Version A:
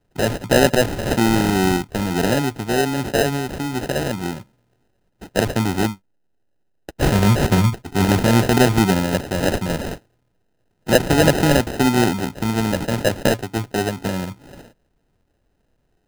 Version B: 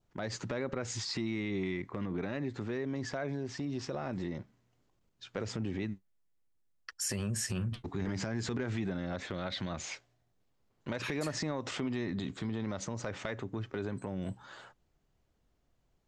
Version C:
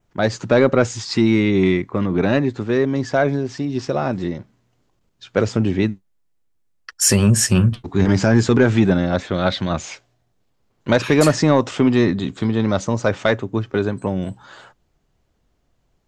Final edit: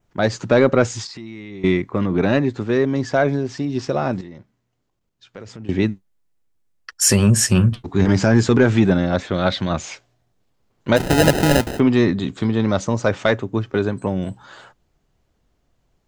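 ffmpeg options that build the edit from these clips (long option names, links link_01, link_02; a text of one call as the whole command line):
ffmpeg -i take0.wav -i take1.wav -i take2.wav -filter_complex "[1:a]asplit=2[link_01][link_02];[2:a]asplit=4[link_03][link_04][link_05][link_06];[link_03]atrim=end=1.072[link_07];[link_01]atrim=start=1.068:end=1.642[link_08];[link_04]atrim=start=1.638:end=4.212[link_09];[link_02]atrim=start=4.208:end=5.692[link_10];[link_05]atrim=start=5.688:end=10.98[link_11];[0:a]atrim=start=10.96:end=11.8[link_12];[link_06]atrim=start=11.78[link_13];[link_07][link_08]acrossfade=duration=0.004:curve1=hsin:curve2=hsin[link_14];[link_14][link_09]acrossfade=duration=0.004:curve1=hsin:curve2=hsin[link_15];[link_15][link_10]acrossfade=duration=0.004:curve1=hsin:curve2=hsin[link_16];[link_16][link_11]acrossfade=duration=0.004:curve1=hsin:curve2=hsin[link_17];[link_17][link_12]acrossfade=duration=0.02:curve1=tri:curve2=tri[link_18];[link_18][link_13]acrossfade=duration=0.02:curve1=tri:curve2=tri" out.wav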